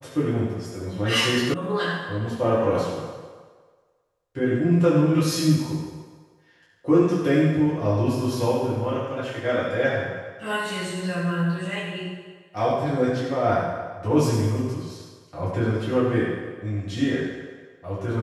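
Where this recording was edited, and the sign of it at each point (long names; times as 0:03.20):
0:01.54: cut off before it has died away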